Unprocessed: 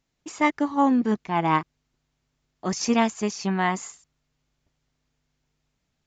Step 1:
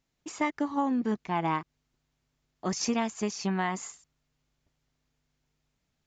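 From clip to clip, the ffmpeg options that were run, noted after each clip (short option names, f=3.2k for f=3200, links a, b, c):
-af "acompressor=threshold=-22dB:ratio=6,volume=-2.5dB"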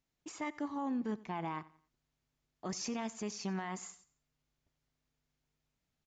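-af "alimiter=limit=-23.5dB:level=0:latency=1:release=20,aecho=1:1:89|178|267:0.1|0.037|0.0137,volume=-6.5dB"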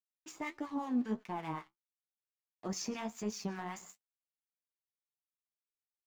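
-filter_complex "[0:a]aeval=exprs='sgn(val(0))*max(abs(val(0))-0.00168,0)':c=same,flanger=delay=8.5:depth=8.1:regen=45:speed=1.5:shape=triangular,acrossover=split=1100[a][b];[a]aeval=exprs='val(0)*(1-0.7/2+0.7/2*cos(2*PI*5.2*n/s))':c=same[c];[b]aeval=exprs='val(0)*(1-0.7/2-0.7/2*cos(2*PI*5.2*n/s))':c=same[d];[c][d]amix=inputs=2:normalize=0,volume=7.5dB"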